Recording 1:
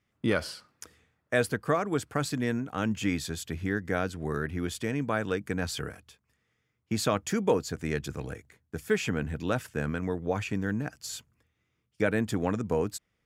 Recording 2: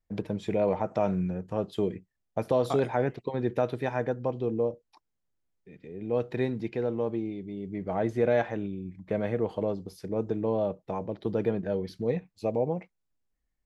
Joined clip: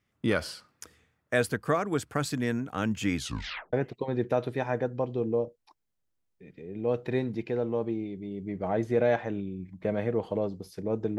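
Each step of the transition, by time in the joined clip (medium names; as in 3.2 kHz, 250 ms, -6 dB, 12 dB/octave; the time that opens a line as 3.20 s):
recording 1
3.16 s: tape stop 0.57 s
3.73 s: go over to recording 2 from 2.99 s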